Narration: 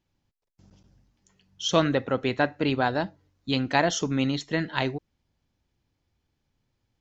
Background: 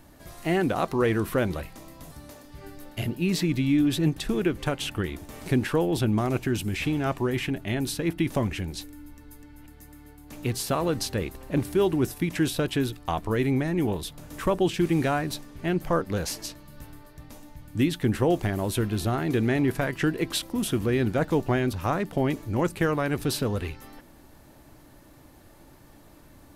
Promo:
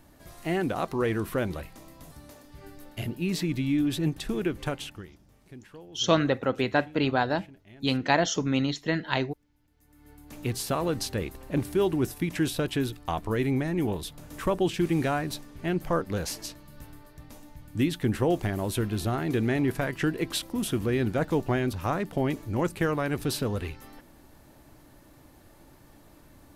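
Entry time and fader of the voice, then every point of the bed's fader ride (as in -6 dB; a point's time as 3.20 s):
4.35 s, -0.5 dB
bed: 4.76 s -3.5 dB
5.20 s -23 dB
9.67 s -23 dB
10.13 s -2 dB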